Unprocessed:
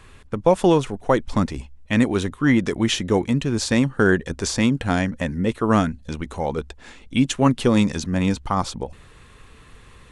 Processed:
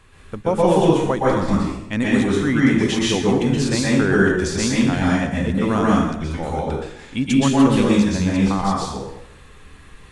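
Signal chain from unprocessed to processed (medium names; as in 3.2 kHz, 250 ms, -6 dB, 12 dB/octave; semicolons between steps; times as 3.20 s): plate-style reverb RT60 0.81 s, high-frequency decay 0.85×, pre-delay 110 ms, DRR -6 dB; trim -4.5 dB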